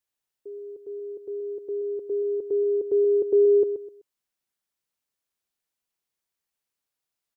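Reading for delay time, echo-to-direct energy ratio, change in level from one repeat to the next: 0.127 s, -9.5 dB, -11.5 dB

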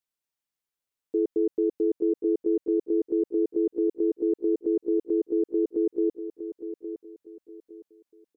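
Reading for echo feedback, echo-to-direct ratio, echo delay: 30%, -10.0 dB, 0.862 s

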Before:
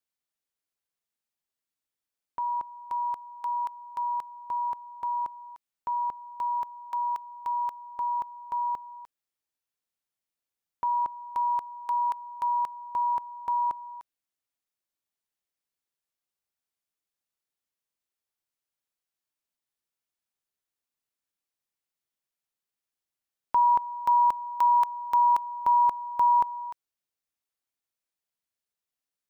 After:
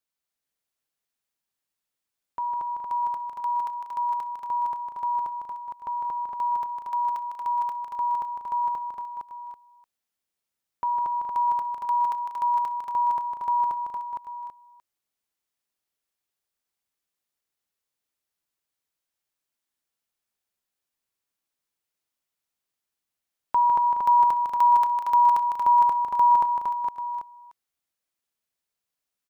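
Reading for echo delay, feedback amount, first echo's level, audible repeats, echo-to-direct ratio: 62 ms, no steady repeat, -20.0 dB, 6, -0.5 dB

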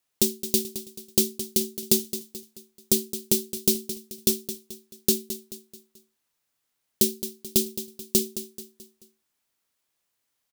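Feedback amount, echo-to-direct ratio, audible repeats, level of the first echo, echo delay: 44%, -11.0 dB, 4, -12.0 dB, 0.217 s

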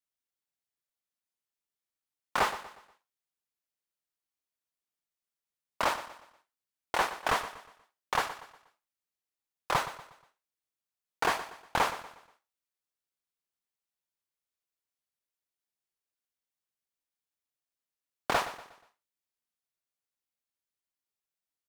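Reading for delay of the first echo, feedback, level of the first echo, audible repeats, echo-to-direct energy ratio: 0.12 s, 39%, -13.5 dB, 3, -13.0 dB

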